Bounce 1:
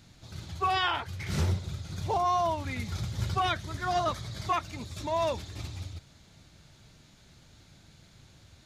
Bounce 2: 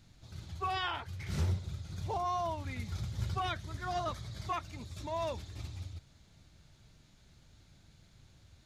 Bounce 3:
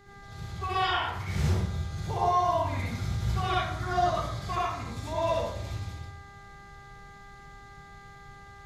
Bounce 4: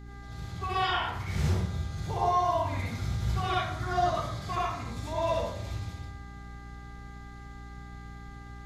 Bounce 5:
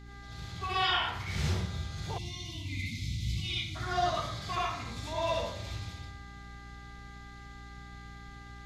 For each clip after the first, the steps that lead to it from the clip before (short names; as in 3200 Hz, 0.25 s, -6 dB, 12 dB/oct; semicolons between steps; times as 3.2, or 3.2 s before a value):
low shelf 79 Hz +9 dB; gain -7.5 dB
buzz 400 Hz, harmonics 5, -58 dBFS -2 dB/oct; reverb RT60 0.75 s, pre-delay 52 ms, DRR -7 dB
hum 60 Hz, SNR 13 dB; gain -1 dB
spectral gain 2.18–3.76, 360–2000 Hz -30 dB; bell 3600 Hz +8.5 dB 2.2 oct; gain -4 dB